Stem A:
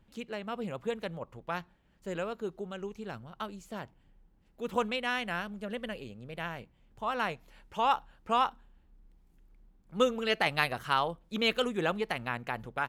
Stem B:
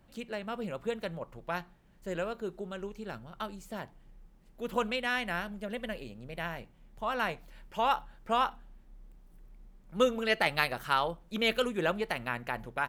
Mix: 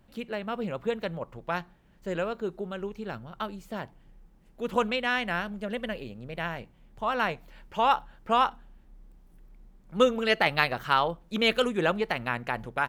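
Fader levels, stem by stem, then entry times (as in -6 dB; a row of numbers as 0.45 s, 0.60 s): -2.5 dB, -0.5 dB; 0.00 s, 0.00 s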